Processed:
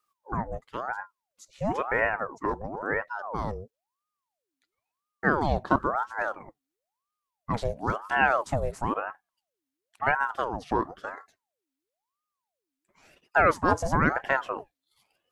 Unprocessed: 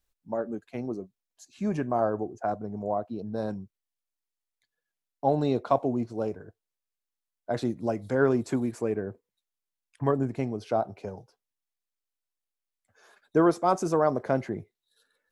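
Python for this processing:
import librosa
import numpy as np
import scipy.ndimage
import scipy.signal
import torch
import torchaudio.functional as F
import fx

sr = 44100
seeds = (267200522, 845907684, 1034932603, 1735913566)

y = fx.ring_lfo(x, sr, carrier_hz=750.0, swing_pct=65, hz=0.98)
y = y * 10.0 ** (3.0 / 20.0)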